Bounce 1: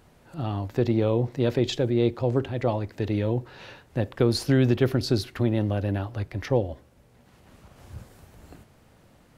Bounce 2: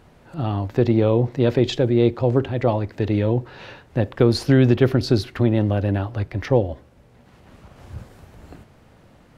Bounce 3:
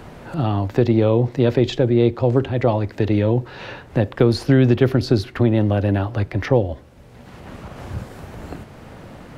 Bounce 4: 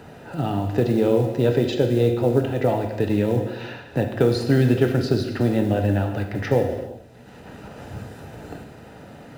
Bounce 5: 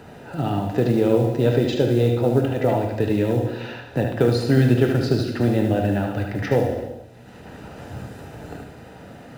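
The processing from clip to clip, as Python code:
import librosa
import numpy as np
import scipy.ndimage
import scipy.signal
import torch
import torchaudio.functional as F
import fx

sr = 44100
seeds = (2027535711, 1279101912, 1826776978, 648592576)

y1 = fx.high_shelf(x, sr, hz=6000.0, db=-9.5)
y1 = y1 * 10.0 ** (5.5 / 20.0)
y2 = fx.band_squash(y1, sr, depth_pct=40)
y2 = y2 * 10.0 ** (1.5 / 20.0)
y3 = fx.notch_comb(y2, sr, f0_hz=1100.0)
y3 = fx.quant_float(y3, sr, bits=4)
y3 = fx.rev_gated(y3, sr, seeds[0], gate_ms=420, shape='falling', drr_db=3.5)
y3 = y3 * 10.0 ** (-3.0 / 20.0)
y4 = y3 + 10.0 ** (-6.5 / 20.0) * np.pad(y3, (int(75 * sr / 1000.0), 0))[:len(y3)]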